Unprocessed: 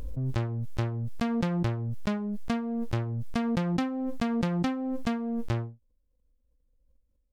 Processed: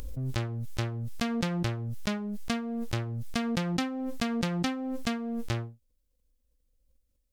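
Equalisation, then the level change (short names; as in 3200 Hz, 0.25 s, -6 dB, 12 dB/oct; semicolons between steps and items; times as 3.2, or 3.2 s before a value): high shelf 2100 Hz +11.5 dB; notch 970 Hz, Q 9.7; -2.5 dB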